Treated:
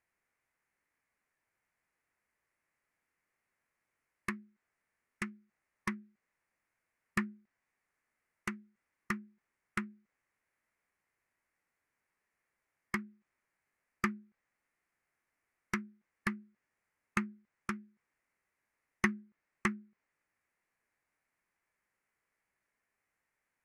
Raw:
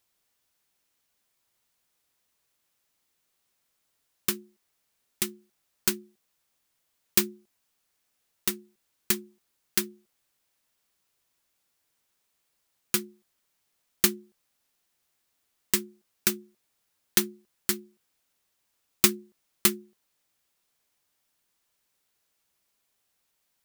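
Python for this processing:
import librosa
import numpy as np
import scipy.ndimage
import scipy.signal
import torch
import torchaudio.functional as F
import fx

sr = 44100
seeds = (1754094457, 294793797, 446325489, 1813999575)

y = fx.high_shelf_res(x, sr, hz=3600.0, db=-9.5, q=3.0)
y = fx.env_lowpass_down(y, sr, base_hz=2900.0, full_db=-28.0)
y = fx.formant_shift(y, sr, semitones=-5)
y = F.gain(torch.from_numpy(y), -5.5).numpy()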